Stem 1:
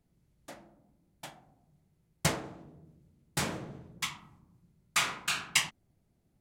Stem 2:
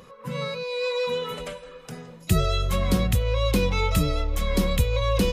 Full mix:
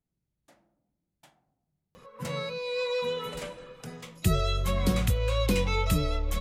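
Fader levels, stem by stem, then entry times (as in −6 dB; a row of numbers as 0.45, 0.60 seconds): −13.0, −3.5 decibels; 0.00, 1.95 seconds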